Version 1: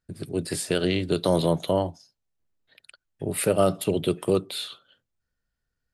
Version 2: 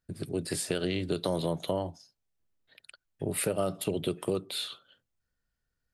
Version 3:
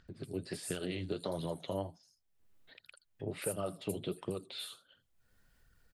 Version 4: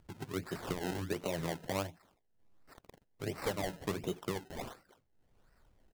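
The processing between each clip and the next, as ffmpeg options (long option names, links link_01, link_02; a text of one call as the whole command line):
ffmpeg -i in.wav -af "acompressor=threshold=-26dB:ratio=3,volume=-1.5dB" out.wav
ffmpeg -i in.wav -filter_complex "[0:a]acrossover=split=5800[link_01][link_02];[link_02]adelay=80[link_03];[link_01][link_03]amix=inputs=2:normalize=0,flanger=delay=0.6:depth=9.6:regen=33:speed=1.4:shape=sinusoidal,acompressor=mode=upward:threshold=-45dB:ratio=2.5,volume=-3.5dB" out.wav
ffmpeg -i in.wav -af "acrusher=samples=26:mix=1:aa=0.000001:lfo=1:lforange=26:lforate=1.4,volume=1dB" out.wav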